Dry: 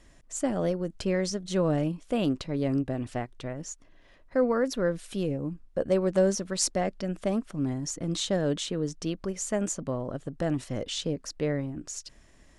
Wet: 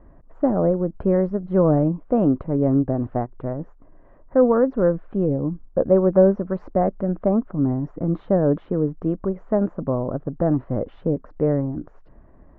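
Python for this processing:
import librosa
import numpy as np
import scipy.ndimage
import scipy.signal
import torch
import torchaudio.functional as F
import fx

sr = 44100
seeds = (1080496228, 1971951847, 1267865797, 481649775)

y = scipy.signal.sosfilt(scipy.signal.butter(4, 1200.0, 'lowpass', fs=sr, output='sos'), x)
y = y * librosa.db_to_amplitude(8.5)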